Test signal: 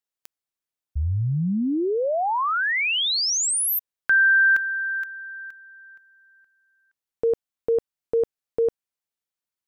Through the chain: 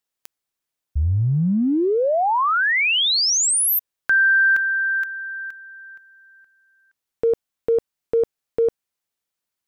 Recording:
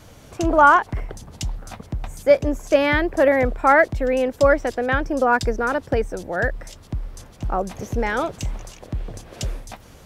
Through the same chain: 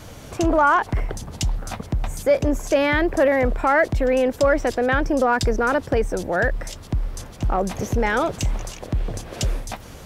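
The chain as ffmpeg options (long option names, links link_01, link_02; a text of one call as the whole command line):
ffmpeg -i in.wav -af "acompressor=threshold=-22dB:ratio=2.5:attack=0.32:release=25:knee=6:detection=rms,volume=6dB" out.wav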